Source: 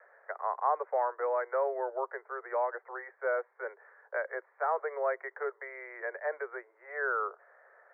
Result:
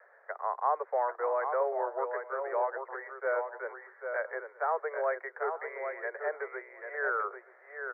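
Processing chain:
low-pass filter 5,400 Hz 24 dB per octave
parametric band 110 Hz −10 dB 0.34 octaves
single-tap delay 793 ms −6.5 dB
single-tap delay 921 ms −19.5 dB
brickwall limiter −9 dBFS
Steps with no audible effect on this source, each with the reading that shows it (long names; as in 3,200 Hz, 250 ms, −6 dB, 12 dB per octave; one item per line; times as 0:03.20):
low-pass filter 5,400 Hz: nothing at its input above 2,300 Hz
parametric band 110 Hz: nothing at its input below 340 Hz
brickwall limiter −9 dBFS: peak of its input −16.5 dBFS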